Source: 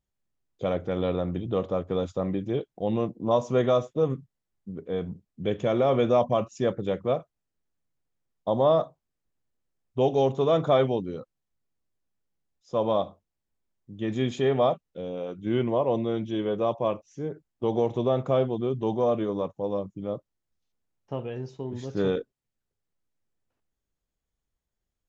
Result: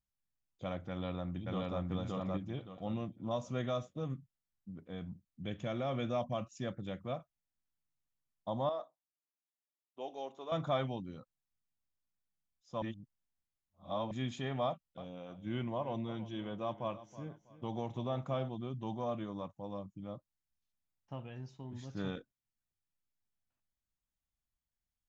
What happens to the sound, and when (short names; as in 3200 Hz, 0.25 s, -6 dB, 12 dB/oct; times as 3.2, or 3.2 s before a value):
0.89–1.8 echo throw 0.57 s, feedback 30%, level -0.5 dB
2.91–7.13 dynamic EQ 960 Hz, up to -6 dB, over -43 dBFS
8.69–10.52 ladder high-pass 300 Hz, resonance 30%
12.82–14.11 reverse
14.65–18.49 feedback echo 0.324 s, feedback 31%, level -15.5 dB
whole clip: bell 430 Hz -14 dB 0.66 oct; gain -8 dB